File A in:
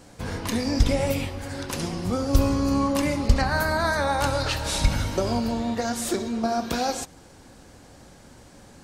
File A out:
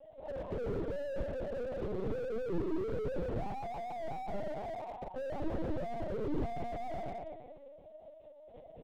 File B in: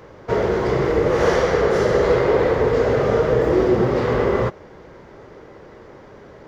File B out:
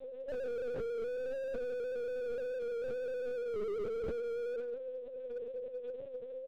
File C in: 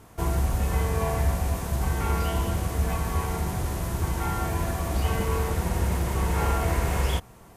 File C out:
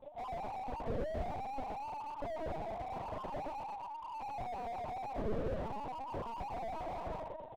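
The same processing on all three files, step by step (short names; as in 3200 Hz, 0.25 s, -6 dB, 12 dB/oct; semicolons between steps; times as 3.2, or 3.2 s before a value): sine-wave speech; inverse Chebyshev low-pass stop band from 1600 Hz, stop band 50 dB; compressor 4:1, threshold -27 dBFS; limiter -26.5 dBFS; soft clip -31.5 dBFS; split-band echo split 390 Hz, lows 0.237 s, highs 0.116 s, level -6 dB; short-mantissa float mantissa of 2-bit; doubler 30 ms -3 dB; LPC vocoder at 8 kHz pitch kept; slew limiter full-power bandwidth 5.5 Hz; gain +2.5 dB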